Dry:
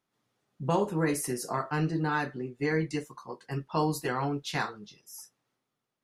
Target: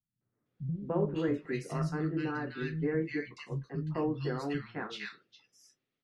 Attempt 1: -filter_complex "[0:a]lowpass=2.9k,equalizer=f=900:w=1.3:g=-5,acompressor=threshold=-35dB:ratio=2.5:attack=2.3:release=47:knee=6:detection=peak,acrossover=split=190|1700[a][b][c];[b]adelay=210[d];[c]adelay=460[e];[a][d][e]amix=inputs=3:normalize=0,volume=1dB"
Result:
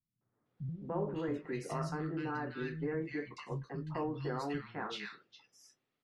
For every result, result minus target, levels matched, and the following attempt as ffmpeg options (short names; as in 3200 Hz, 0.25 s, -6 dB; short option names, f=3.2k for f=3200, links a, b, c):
compressor: peak gain reduction +8.5 dB; 1000 Hz band +5.0 dB
-filter_complex "[0:a]lowpass=2.9k,equalizer=f=900:w=1.3:g=-5,acrossover=split=190|1700[a][b][c];[b]adelay=210[d];[c]adelay=460[e];[a][d][e]amix=inputs=3:normalize=0,volume=1dB"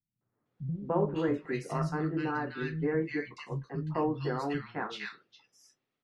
1000 Hz band +4.5 dB
-filter_complex "[0:a]lowpass=2.9k,equalizer=f=900:w=1.3:g=-12.5,acrossover=split=190|1700[a][b][c];[b]adelay=210[d];[c]adelay=460[e];[a][d][e]amix=inputs=3:normalize=0,volume=1dB"